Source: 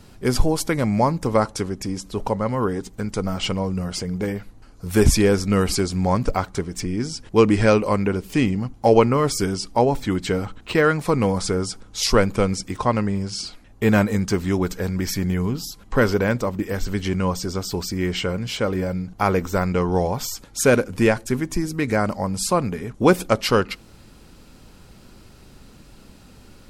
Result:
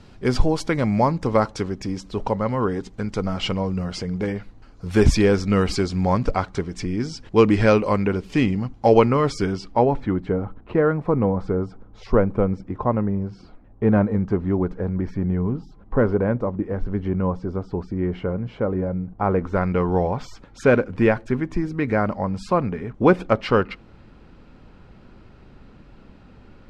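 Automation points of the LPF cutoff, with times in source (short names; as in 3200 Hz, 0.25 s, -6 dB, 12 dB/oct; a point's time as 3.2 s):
9.12 s 4700 Hz
9.9 s 2300 Hz
10.24 s 1000 Hz
19.23 s 1000 Hz
19.64 s 2300 Hz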